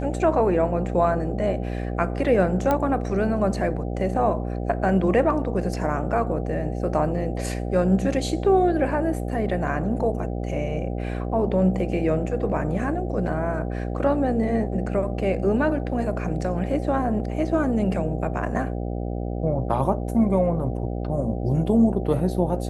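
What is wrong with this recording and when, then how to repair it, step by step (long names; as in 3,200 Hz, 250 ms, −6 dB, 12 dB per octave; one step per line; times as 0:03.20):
mains buzz 60 Hz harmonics 13 −28 dBFS
0:02.71: click −10 dBFS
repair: click removal
hum removal 60 Hz, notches 13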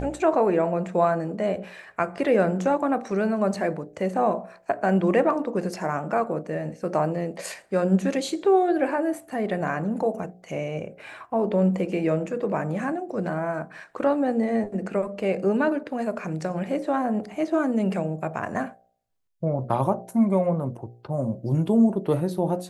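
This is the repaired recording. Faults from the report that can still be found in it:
none of them is left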